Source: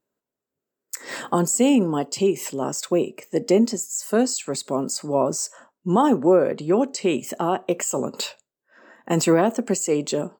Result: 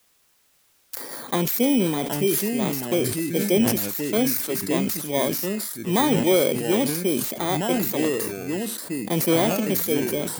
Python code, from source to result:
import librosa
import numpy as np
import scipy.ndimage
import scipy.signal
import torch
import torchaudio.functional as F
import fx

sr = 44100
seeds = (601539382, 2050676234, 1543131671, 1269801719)

y = fx.bit_reversed(x, sr, seeds[0], block=16)
y = fx.quant_dither(y, sr, seeds[1], bits=10, dither='triangular')
y = fx.echo_pitch(y, sr, ms=522, semitones=-3, count=2, db_per_echo=-6.0)
y = fx.sustainer(y, sr, db_per_s=43.0)
y = F.gain(torch.from_numpy(y), -3.0).numpy()